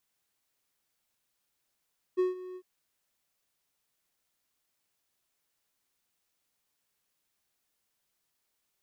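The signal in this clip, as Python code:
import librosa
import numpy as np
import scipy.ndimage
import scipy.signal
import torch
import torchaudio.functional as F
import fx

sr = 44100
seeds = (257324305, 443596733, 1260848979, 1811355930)

y = fx.adsr_tone(sr, wave='triangle', hz=367.0, attack_ms=24.0, decay_ms=151.0, sustain_db=-17.5, held_s=0.39, release_ms=62.0, level_db=-20.0)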